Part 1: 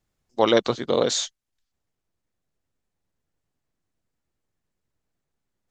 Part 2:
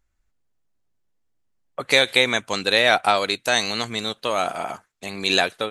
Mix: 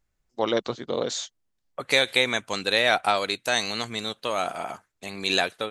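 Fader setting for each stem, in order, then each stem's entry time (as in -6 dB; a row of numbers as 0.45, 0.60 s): -6.0, -4.0 dB; 0.00, 0.00 s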